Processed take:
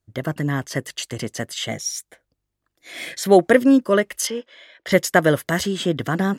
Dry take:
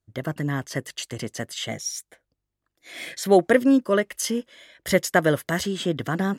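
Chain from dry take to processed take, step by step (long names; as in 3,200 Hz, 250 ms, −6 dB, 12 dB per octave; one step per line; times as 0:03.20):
0:04.27–0:04.92: three-way crossover with the lows and the highs turned down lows −17 dB, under 330 Hz, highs −21 dB, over 5,300 Hz
level +3.5 dB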